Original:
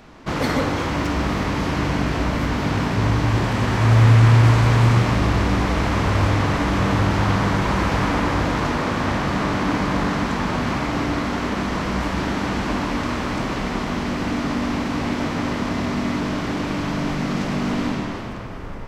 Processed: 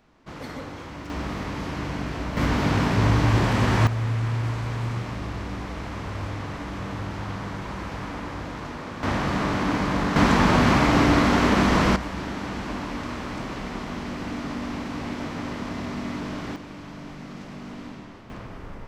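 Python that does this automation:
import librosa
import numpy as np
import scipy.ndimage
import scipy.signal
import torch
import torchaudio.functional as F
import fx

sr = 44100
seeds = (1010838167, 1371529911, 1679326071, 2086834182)

y = fx.gain(x, sr, db=fx.steps((0.0, -15.0), (1.1, -8.5), (2.37, -0.5), (3.87, -13.0), (9.03, -3.0), (10.16, 4.5), (11.96, -8.0), (16.56, -15.5), (18.3, -6.0)))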